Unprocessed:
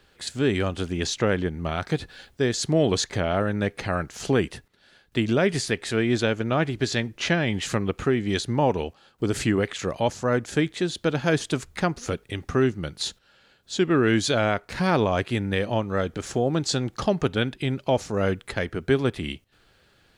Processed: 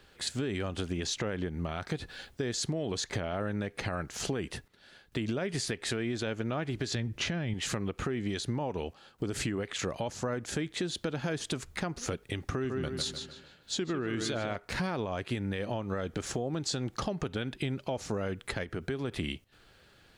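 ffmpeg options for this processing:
-filter_complex "[0:a]asettb=1/sr,asplit=3[s0][s1][s2];[s0]atrim=end=6.954[s3];[s1]atrim=start=6.95:end=7.54,asetpts=PTS-STARTPTS,afade=t=in:d=0.004:c=qsin,afade=t=out:st=0.586:d=0.004:c=qsin,equalizer=f=83:t=o:w=2.4:g=11.5[s4];[s2]atrim=start=7.536[s5];[s3][s4]acrossfade=d=0.004:c1=hsin:c2=qsin[s6];[s6][s5]acrossfade=d=0.004:c1=qsin:c2=hsin,asettb=1/sr,asplit=3[s7][s8][s9];[s7]atrim=end=12.344[s10];[s8]atrim=start=12.34:end=14.56,asetpts=PTS-STARTPTS,afade=t=in:d=0.004:c=qsin,afade=t=out:st=2.216:d=0.004:c=qsin,asplit=2[s11][s12];[s12]adelay=150,lowpass=f=3600:p=1,volume=0.398,asplit=2[s13][s14];[s14]adelay=150,lowpass=f=3600:p=1,volume=0.42,asplit=2[s15][s16];[s16]adelay=150,lowpass=f=3600:p=1,volume=0.42,asplit=2[s17][s18];[s18]adelay=150,lowpass=f=3600:p=1,volume=0.42,asplit=2[s19][s20];[s20]adelay=150,lowpass=f=3600:p=1,volume=0.42[s21];[s11][s13][s15][s17][s19][s21]amix=inputs=6:normalize=0,atrim=end_sample=97902[s22];[s9]atrim=start=14.556[s23];[s10][s22]acrossfade=d=0.004:c1=hsin:c2=qsin[s24];[s24][s23]acrossfade=d=0.004:c1=qsin:c2=hsin,asplit=3[s25][s26][s27];[s25]afade=t=out:st=18.63:d=0.02[s28];[s26]acompressor=threshold=0.0251:ratio=2.5:attack=3.2:release=140:knee=1:detection=peak,afade=t=in:st=18.63:d=0.02,afade=t=out:st=19.11:d=0.02[s29];[s27]afade=t=in:st=19.11:d=0.02[s30];[s28][s29][s30]amix=inputs=3:normalize=0,alimiter=limit=0.112:level=0:latency=1:release=159,acompressor=threshold=0.0355:ratio=6"

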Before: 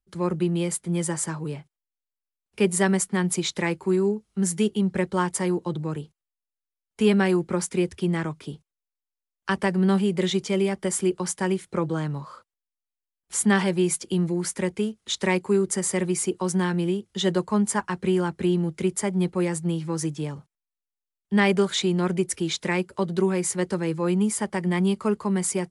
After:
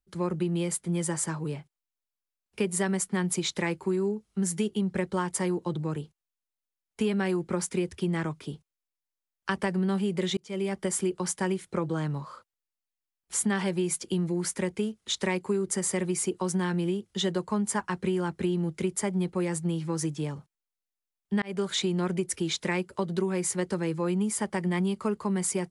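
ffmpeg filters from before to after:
-filter_complex "[0:a]asplit=3[s0][s1][s2];[s0]atrim=end=10.37,asetpts=PTS-STARTPTS,afade=t=out:st=10.366:d=0.004:c=hsin[s3];[s1]atrim=start=10.37:end=21.42,asetpts=PTS-STARTPTS,afade=t=in:d=0.45,afade=t=out:st=11.046:d=0.004:c=hsin[s4];[s2]atrim=start=21.42,asetpts=PTS-STARTPTS,afade=t=in:d=0.47:c=qsin[s5];[s3][s4][s5]concat=n=3:v=0:a=1,acompressor=threshold=0.0794:ratio=6,volume=0.841"

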